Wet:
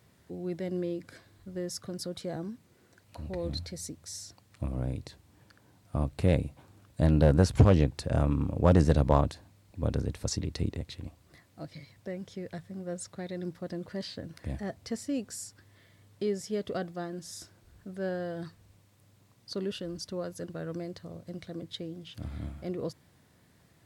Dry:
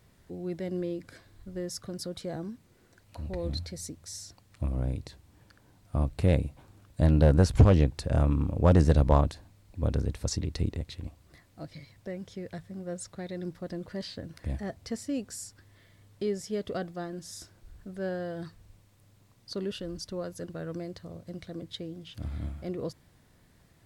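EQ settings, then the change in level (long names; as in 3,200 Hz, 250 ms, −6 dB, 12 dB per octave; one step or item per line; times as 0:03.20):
high-pass filter 83 Hz
0.0 dB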